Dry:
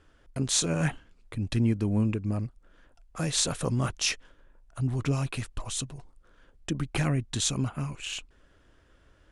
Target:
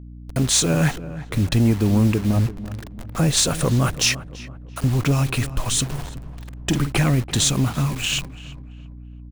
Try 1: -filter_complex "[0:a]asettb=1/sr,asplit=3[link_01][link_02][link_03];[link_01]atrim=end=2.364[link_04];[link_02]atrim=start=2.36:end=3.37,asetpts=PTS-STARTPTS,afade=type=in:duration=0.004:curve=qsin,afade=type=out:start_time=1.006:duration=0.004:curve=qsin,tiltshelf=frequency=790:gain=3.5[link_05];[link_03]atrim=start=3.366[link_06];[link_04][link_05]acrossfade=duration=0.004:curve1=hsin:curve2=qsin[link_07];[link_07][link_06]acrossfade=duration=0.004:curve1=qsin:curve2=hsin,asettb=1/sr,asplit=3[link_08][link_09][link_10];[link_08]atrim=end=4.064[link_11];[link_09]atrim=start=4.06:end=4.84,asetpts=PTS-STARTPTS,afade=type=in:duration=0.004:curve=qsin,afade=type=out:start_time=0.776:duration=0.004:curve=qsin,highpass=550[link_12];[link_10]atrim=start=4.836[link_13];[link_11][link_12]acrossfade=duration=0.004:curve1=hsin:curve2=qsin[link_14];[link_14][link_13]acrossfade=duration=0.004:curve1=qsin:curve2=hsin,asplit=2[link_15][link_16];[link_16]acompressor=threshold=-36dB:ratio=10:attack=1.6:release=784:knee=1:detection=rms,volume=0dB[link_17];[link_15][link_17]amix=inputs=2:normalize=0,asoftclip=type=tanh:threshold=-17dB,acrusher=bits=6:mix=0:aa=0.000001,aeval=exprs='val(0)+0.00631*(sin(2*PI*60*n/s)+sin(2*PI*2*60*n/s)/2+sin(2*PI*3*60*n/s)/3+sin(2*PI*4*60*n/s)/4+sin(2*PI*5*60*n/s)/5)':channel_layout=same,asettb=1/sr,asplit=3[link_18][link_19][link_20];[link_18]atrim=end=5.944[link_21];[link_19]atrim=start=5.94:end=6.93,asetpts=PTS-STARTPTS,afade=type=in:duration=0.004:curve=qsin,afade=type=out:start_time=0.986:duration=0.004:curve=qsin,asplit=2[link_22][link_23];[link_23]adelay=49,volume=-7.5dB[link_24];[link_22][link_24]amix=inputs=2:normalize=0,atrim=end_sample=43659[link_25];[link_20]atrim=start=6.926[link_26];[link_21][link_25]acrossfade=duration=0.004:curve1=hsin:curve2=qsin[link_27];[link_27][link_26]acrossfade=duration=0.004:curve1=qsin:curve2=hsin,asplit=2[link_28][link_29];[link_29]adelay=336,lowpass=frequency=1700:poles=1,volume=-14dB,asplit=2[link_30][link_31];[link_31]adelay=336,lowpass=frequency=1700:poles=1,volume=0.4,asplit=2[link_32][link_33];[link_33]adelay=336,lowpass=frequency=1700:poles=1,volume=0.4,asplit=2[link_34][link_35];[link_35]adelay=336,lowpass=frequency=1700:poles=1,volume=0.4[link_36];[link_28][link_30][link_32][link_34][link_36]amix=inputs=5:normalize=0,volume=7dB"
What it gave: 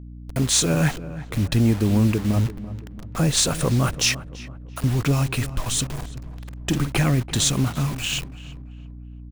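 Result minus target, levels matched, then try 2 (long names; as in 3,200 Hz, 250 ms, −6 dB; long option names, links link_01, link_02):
downward compressor: peak gain reduction +8.5 dB
-filter_complex "[0:a]asettb=1/sr,asplit=3[link_01][link_02][link_03];[link_01]atrim=end=2.364[link_04];[link_02]atrim=start=2.36:end=3.37,asetpts=PTS-STARTPTS,afade=type=in:duration=0.004:curve=qsin,afade=type=out:start_time=1.006:duration=0.004:curve=qsin,tiltshelf=frequency=790:gain=3.5[link_05];[link_03]atrim=start=3.366[link_06];[link_04][link_05]acrossfade=duration=0.004:curve1=hsin:curve2=qsin[link_07];[link_07][link_06]acrossfade=duration=0.004:curve1=qsin:curve2=hsin,asettb=1/sr,asplit=3[link_08][link_09][link_10];[link_08]atrim=end=4.064[link_11];[link_09]atrim=start=4.06:end=4.84,asetpts=PTS-STARTPTS,afade=type=in:duration=0.004:curve=qsin,afade=type=out:start_time=0.776:duration=0.004:curve=qsin,highpass=550[link_12];[link_10]atrim=start=4.836[link_13];[link_11][link_12]acrossfade=duration=0.004:curve1=hsin:curve2=qsin[link_14];[link_14][link_13]acrossfade=duration=0.004:curve1=qsin:curve2=hsin,asplit=2[link_15][link_16];[link_16]acompressor=threshold=-26.5dB:ratio=10:attack=1.6:release=784:knee=1:detection=rms,volume=0dB[link_17];[link_15][link_17]amix=inputs=2:normalize=0,asoftclip=type=tanh:threshold=-17dB,acrusher=bits=6:mix=0:aa=0.000001,aeval=exprs='val(0)+0.00631*(sin(2*PI*60*n/s)+sin(2*PI*2*60*n/s)/2+sin(2*PI*3*60*n/s)/3+sin(2*PI*4*60*n/s)/4+sin(2*PI*5*60*n/s)/5)':channel_layout=same,asettb=1/sr,asplit=3[link_18][link_19][link_20];[link_18]atrim=end=5.944[link_21];[link_19]atrim=start=5.94:end=6.93,asetpts=PTS-STARTPTS,afade=type=in:duration=0.004:curve=qsin,afade=type=out:start_time=0.986:duration=0.004:curve=qsin,asplit=2[link_22][link_23];[link_23]adelay=49,volume=-7.5dB[link_24];[link_22][link_24]amix=inputs=2:normalize=0,atrim=end_sample=43659[link_25];[link_20]atrim=start=6.926[link_26];[link_21][link_25]acrossfade=duration=0.004:curve1=hsin:curve2=qsin[link_27];[link_27][link_26]acrossfade=duration=0.004:curve1=qsin:curve2=hsin,asplit=2[link_28][link_29];[link_29]adelay=336,lowpass=frequency=1700:poles=1,volume=-14dB,asplit=2[link_30][link_31];[link_31]adelay=336,lowpass=frequency=1700:poles=1,volume=0.4,asplit=2[link_32][link_33];[link_33]adelay=336,lowpass=frequency=1700:poles=1,volume=0.4,asplit=2[link_34][link_35];[link_35]adelay=336,lowpass=frequency=1700:poles=1,volume=0.4[link_36];[link_28][link_30][link_32][link_34][link_36]amix=inputs=5:normalize=0,volume=7dB"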